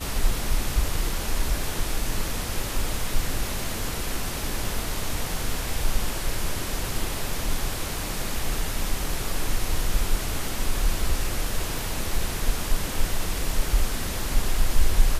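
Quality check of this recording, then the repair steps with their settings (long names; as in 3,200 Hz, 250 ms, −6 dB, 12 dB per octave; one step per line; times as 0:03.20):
0:11.79: click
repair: click removal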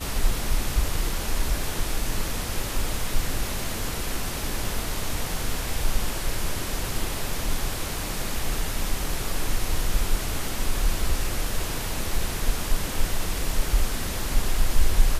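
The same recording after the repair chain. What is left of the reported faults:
none of them is left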